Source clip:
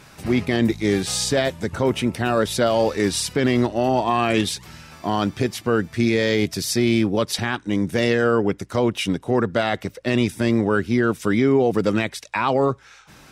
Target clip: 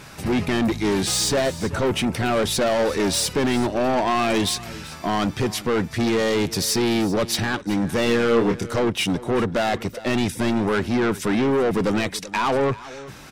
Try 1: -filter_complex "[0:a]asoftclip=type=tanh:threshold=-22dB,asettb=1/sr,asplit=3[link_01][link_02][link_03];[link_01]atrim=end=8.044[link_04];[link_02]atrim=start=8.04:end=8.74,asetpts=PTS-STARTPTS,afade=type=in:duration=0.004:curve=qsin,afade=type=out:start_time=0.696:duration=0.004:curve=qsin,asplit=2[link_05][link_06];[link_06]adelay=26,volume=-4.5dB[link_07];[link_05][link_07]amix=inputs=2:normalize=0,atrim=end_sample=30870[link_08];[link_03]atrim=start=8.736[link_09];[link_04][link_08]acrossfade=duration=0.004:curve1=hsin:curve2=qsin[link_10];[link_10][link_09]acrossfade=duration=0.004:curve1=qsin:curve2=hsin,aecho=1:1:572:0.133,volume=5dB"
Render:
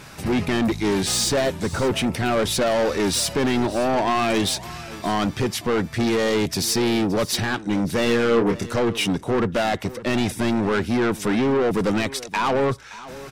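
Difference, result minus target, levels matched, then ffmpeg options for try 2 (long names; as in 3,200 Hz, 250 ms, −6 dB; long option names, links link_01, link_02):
echo 190 ms late
-filter_complex "[0:a]asoftclip=type=tanh:threshold=-22dB,asettb=1/sr,asplit=3[link_01][link_02][link_03];[link_01]atrim=end=8.044[link_04];[link_02]atrim=start=8.04:end=8.74,asetpts=PTS-STARTPTS,afade=type=in:duration=0.004:curve=qsin,afade=type=out:start_time=0.696:duration=0.004:curve=qsin,asplit=2[link_05][link_06];[link_06]adelay=26,volume=-4.5dB[link_07];[link_05][link_07]amix=inputs=2:normalize=0,atrim=end_sample=30870[link_08];[link_03]atrim=start=8.736[link_09];[link_04][link_08]acrossfade=duration=0.004:curve1=hsin:curve2=qsin[link_10];[link_10][link_09]acrossfade=duration=0.004:curve1=qsin:curve2=hsin,aecho=1:1:382:0.133,volume=5dB"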